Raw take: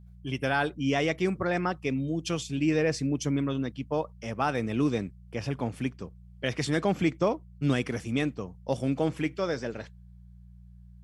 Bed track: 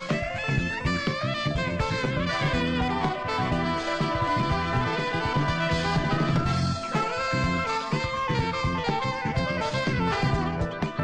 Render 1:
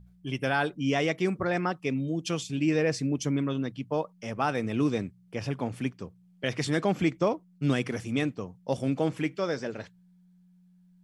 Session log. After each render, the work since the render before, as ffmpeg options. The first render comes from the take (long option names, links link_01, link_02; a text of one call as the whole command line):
ffmpeg -i in.wav -af "bandreject=frequency=60:width_type=h:width=4,bandreject=frequency=120:width_type=h:width=4" out.wav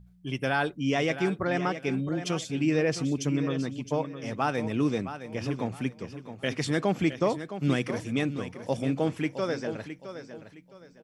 ffmpeg -i in.wav -af "aecho=1:1:664|1328|1992:0.282|0.0817|0.0237" out.wav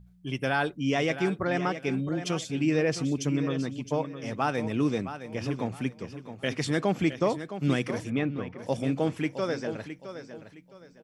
ffmpeg -i in.wav -filter_complex "[0:a]asplit=3[link_01][link_02][link_03];[link_01]afade=type=out:start_time=8.09:duration=0.02[link_04];[link_02]lowpass=2600,afade=type=in:start_time=8.09:duration=0.02,afade=type=out:start_time=8.57:duration=0.02[link_05];[link_03]afade=type=in:start_time=8.57:duration=0.02[link_06];[link_04][link_05][link_06]amix=inputs=3:normalize=0" out.wav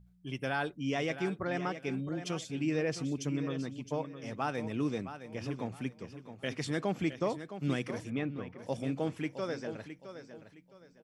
ffmpeg -i in.wav -af "volume=-6.5dB" out.wav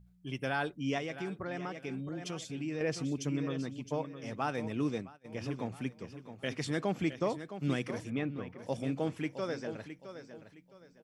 ffmpeg -i in.wav -filter_complex "[0:a]asettb=1/sr,asplit=3[link_01][link_02][link_03];[link_01]atrim=end=0.984[link_04];[link_02]atrim=start=0.98:end=2.81,asetpts=PTS-STARTPTS,afade=type=in:duration=0.004:curve=qsin,afade=type=out:start_time=1.826:duration=0.004:curve=qsin,acompressor=threshold=-37dB:ratio=2:attack=3.2:release=140:knee=1:detection=peak[link_05];[link_03]atrim=start=2.806[link_06];[link_04][link_05]acrossfade=duration=0.004:curve1=hsin:curve2=qsin[link_07];[link_07][link_06]acrossfade=duration=0.004:curve1=qsin:curve2=hsin,asplit=3[link_08][link_09][link_10];[link_08]afade=type=out:start_time=4.73:duration=0.02[link_11];[link_09]agate=range=-33dB:threshold=-35dB:ratio=3:release=100:detection=peak,afade=type=in:start_time=4.73:duration=0.02,afade=type=out:start_time=5.24:duration=0.02[link_12];[link_10]afade=type=in:start_time=5.24:duration=0.02[link_13];[link_11][link_12][link_13]amix=inputs=3:normalize=0" out.wav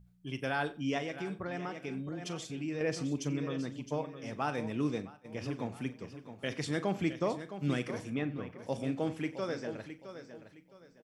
ffmpeg -i in.wav -filter_complex "[0:a]asplit=2[link_01][link_02];[link_02]adelay=41,volume=-14dB[link_03];[link_01][link_03]amix=inputs=2:normalize=0,asplit=2[link_04][link_05];[link_05]adelay=91,lowpass=frequency=4200:poles=1,volume=-18.5dB,asplit=2[link_06][link_07];[link_07]adelay=91,lowpass=frequency=4200:poles=1,volume=0.18[link_08];[link_04][link_06][link_08]amix=inputs=3:normalize=0" out.wav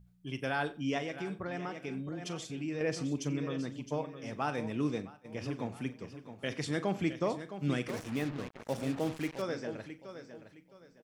ffmpeg -i in.wav -filter_complex "[0:a]asettb=1/sr,asplit=3[link_01][link_02][link_03];[link_01]atrim=end=7.884[link_04];[link_02]atrim=start=7.88:end=9.42,asetpts=PTS-STARTPTS,afade=type=in:duration=0.004:curve=qsin,afade=type=out:start_time=1.536:duration=0.004:curve=qsin,acrusher=bits=6:mix=0:aa=0.5[link_05];[link_03]atrim=start=9.416[link_06];[link_04][link_05]acrossfade=duration=0.004:curve1=hsin:curve2=qsin[link_07];[link_07][link_06]acrossfade=duration=0.004:curve1=qsin:curve2=hsin" out.wav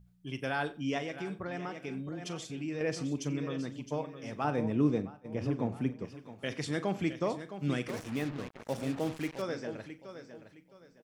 ffmpeg -i in.wav -filter_complex "[0:a]asettb=1/sr,asplit=3[link_01][link_02][link_03];[link_01]atrim=end=4.444[link_04];[link_02]atrim=start=4.44:end=6.05,asetpts=PTS-STARTPTS,afade=type=in:duration=0.004:curve=qsin,afade=type=out:start_time=1.606:duration=0.004:curve=qsin,tiltshelf=frequency=1300:gain=6[link_05];[link_03]atrim=start=6.046[link_06];[link_04][link_05]acrossfade=duration=0.004:curve1=hsin:curve2=qsin[link_07];[link_07][link_06]acrossfade=duration=0.004:curve1=qsin:curve2=hsin" out.wav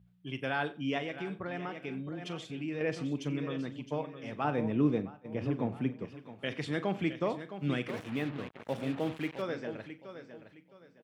ffmpeg -i in.wav -af "highpass=84,highshelf=frequency=4300:width_type=q:width=1.5:gain=-7.5" out.wav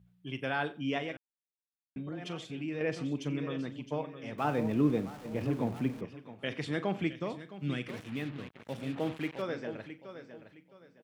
ffmpeg -i in.wav -filter_complex "[0:a]asettb=1/sr,asplit=3[link_01][link_02][link_03];[link_01]atrim=end=4.384[link_04];[link_02]atrim=start=4.38:end=6.01,asetpts=PTS-STARTPTS,afade=type=in:duration=0.004:curve=qsin,afade=type=out:start_time=1.626:duration=0.004:curve=qsin,aeval=exprs='val(0)+0.5*0.00596*sgn(val(0))':channel_layout=same[link_05];[link_03]atrim=start=6.006[link_06];[link_04][link_05]acrossfade=duration=0.004:curve1=hsin:curve2=qsin[link_07];[link_07][link_06]acrossfade=duration=0.004:curve1=qsin:curve2=hsin,asettb=1/sr,asplit=3[link_08][link_09][link_10];[link_08]atrim=end=7.074[link_11];[link_09]atrim=start=7.07:end=8.96,asetpts=PTS-STARTPTS,afade=type=in:duration=0.004:curve=qsin,afade=type=out:start_time=1.886:duration=0.004:curve=qsin,equalizer=frequency=720:width=0.52:gain=-6.5[link_12];[link_10]atrim=start=8.956[link_13];[link_11][link_12]acrossfade=duration=0.004:curve1=hsin:curve2=qsin[link_14];[link_14][link_13]acrossfade=duration=0.004:curve1=qsin:curve2=hsin,asplit=3[link_15][link_16][link_17];[link_15]atrim=end=1.17,asetpts=PTS-STARTPTS,afade=type=out:start_time=1.166:duration=0.004:curve=hsin[link_18];[link_16]atrim=start=1.17:end=1.96,asetpts=PTS-STARTPTS,volume=0[link_19];[link_17]atrim=start=1.96,asetpts=PTS-STARTPTS,afade=type=in:duration=0.004:curve=hsin[link_20];[link_18][link_19][link_20]concat=n=3:v=0:a=1" out.wav